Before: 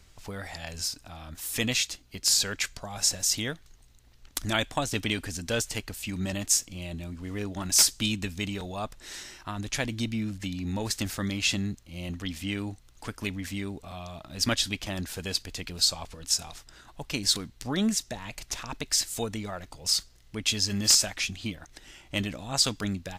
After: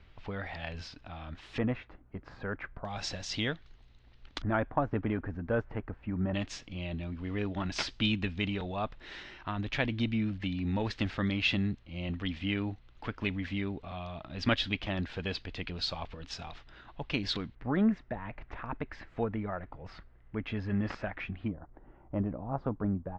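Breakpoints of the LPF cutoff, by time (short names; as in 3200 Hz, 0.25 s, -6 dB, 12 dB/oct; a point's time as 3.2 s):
LPF 24 dB/oct
3300 Hz
from 1.58 s 1500 Hz
from 2.85 s 3900 Hz
from 4.42 s 1500 Hz
from 6.34 s 3400 Hz
from 17.55 s 1900 Hz
from 21.48 s 1100 Hz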